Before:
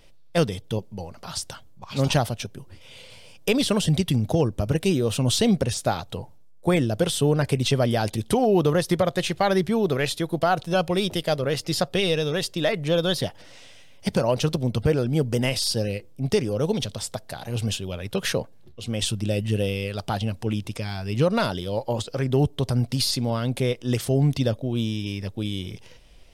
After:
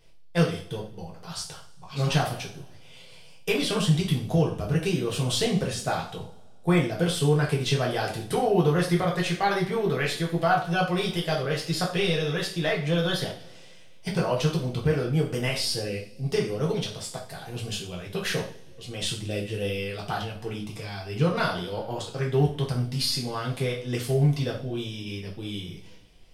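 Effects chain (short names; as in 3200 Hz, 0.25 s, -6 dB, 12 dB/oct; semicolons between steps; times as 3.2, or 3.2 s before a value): two-slope reverb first 0.42 s, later 1.9 s, from -22 dB, DRR -3 dB; dynamic EQ 1700 Hz, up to +6 dB, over -36 dBFS, Q 0.9; gain -9 dB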